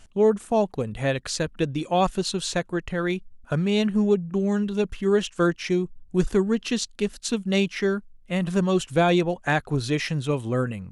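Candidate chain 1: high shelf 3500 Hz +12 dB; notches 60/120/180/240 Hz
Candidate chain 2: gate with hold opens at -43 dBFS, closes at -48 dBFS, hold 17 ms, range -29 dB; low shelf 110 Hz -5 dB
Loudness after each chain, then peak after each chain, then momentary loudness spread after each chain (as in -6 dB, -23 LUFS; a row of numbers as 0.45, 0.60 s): -23.5, -25.5 LUFS; -3.0, -9.5 dBFS; 7, 7 LU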